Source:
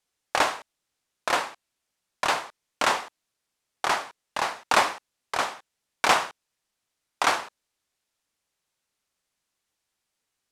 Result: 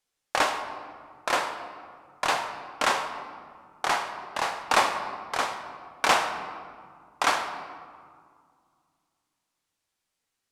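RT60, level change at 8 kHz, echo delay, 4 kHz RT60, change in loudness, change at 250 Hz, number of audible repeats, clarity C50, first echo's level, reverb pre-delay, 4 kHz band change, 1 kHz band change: 2.0 s, -1.0 dB, none, 1.1 s, -1.5 dB, -0.5 dB, none, 8.0 dB, none, 4 ms, -1.0 dB, 0.0 dB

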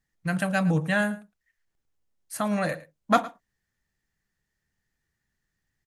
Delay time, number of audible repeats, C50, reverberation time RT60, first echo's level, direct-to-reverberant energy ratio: 0.11 s, 1, none, none, -18.5 dB, none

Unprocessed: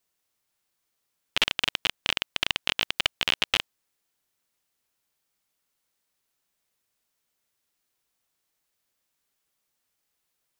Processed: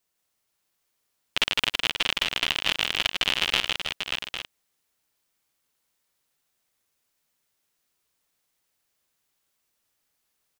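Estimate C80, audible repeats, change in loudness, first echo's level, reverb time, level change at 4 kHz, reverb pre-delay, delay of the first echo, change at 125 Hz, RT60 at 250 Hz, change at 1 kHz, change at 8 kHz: none, 5, +1.5 dB, -3.5 dB, none, +2.5 dB, none, 0.157 s, +2.5 dB, none, +2.5 dB, +2.5 dB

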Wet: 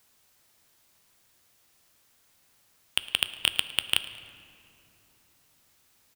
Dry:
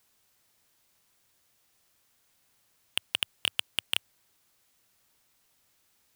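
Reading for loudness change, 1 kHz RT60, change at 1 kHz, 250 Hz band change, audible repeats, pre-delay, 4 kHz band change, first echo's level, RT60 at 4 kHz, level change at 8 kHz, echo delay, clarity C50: +4.0 dB, 2.6 s, +4.5 dB, +4.5 dB, 2, 9 ms, +4.5 dB, -20.0 dB, 1.5 s, +4.0 dB, 0.109 s, 12.0 dB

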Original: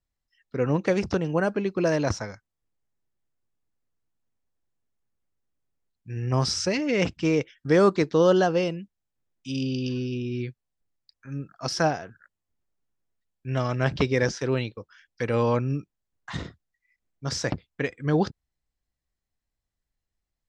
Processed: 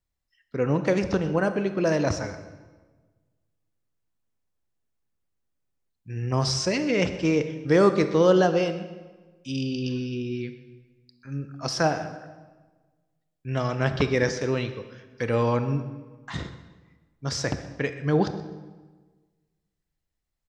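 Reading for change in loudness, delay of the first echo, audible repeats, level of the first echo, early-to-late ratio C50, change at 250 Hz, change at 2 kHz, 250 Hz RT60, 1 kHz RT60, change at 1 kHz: 0.0 dB, 0.126 s, 1, -18.0 dB, 10.5 dB, +0.5 dB, +0.5 dB, 1.6 s, 1.3 s, +0.5 dB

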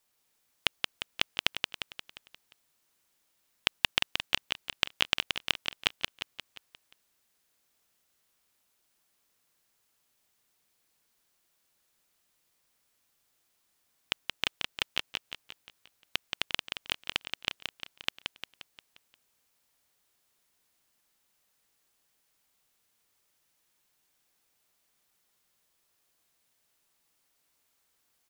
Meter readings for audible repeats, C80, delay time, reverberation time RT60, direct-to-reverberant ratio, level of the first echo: 6, none, 0.176 s, none, none, -5.0 dB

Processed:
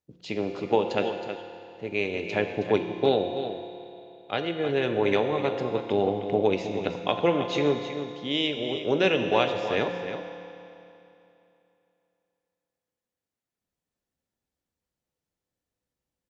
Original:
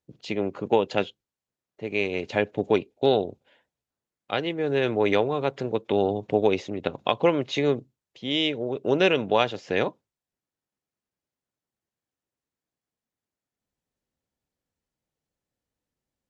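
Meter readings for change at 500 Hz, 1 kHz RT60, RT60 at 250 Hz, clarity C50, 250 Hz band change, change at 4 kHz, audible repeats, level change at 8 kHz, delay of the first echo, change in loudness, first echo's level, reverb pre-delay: -1.0 dB, 2.9 s, 2.9 s, 5.0 dB, -1.0 dB, -1.0 dB, 1, n/a, 0.319 s, -1.5 dB, -9.5 dB, 6 ms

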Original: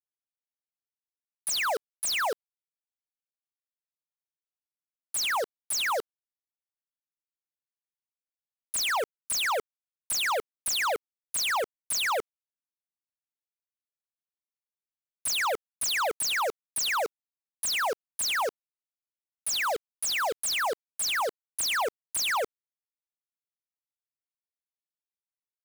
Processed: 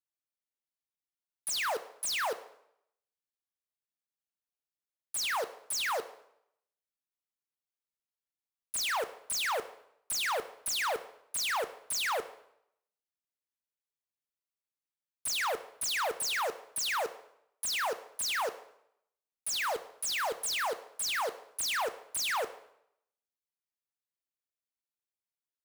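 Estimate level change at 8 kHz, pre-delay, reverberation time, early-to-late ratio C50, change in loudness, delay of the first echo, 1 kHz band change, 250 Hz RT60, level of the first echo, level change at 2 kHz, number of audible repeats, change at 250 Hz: -4.0 dB, 6 ms, 0.75 s, 14.0 dB, -4.0 dB, none, -4.0 dB, 0.70 s, none, -4.0 dB, none, -4.0 dB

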